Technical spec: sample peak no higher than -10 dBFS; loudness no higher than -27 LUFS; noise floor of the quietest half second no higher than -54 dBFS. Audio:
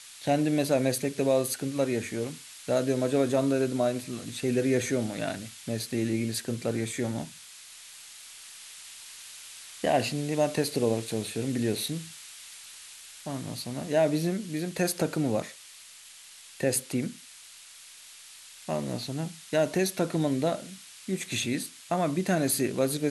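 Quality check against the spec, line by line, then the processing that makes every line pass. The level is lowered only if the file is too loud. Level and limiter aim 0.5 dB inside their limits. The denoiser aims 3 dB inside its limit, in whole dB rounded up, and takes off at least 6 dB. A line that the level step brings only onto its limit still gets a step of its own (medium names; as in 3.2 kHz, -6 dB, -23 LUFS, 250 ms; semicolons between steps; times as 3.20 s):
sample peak -12.5 dBFS: pass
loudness -29.0 LUFS: pass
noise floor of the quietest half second -50 dBFS: fail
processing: noise reduction 7 dB, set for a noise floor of -50 dBFS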